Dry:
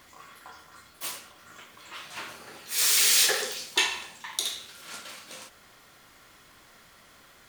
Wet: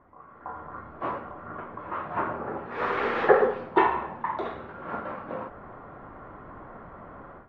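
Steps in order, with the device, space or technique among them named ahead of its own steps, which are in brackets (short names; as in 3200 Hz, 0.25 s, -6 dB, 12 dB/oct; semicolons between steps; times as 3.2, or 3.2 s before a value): action camera in a waterproof case (LPF 1200 Hz 24 dB/oct; AGC gain up to 16 dB; AAC 48 kbps 44100 Hz)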